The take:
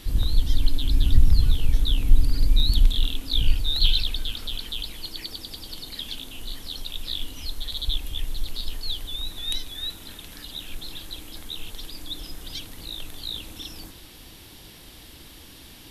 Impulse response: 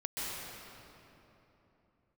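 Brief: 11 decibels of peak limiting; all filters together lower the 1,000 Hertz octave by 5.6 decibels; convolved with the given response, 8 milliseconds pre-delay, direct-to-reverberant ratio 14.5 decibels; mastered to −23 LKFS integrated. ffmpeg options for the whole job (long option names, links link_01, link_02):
-filter_complex "[0:a]equalizer=frequency=1000:width_type=o:gain=-7.5,alimiter=limit=-13.5dB:level=0:latency=1,asplit=2[link_01][link_02];[1:a]atrim=start_sample=2205,adelay=8[link_03];[link_02][link_03]afir=irnorm=-1:irlink=0,volume=-19dB[link_04];[link_01][link_04]amix=inputs=2:normalize=0,volume=7.5dB"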